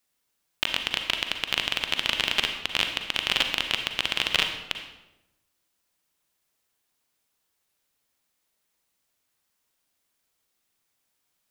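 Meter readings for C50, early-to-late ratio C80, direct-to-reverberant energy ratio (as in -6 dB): 6.5 dB, 8.5 dB, 5.0 dB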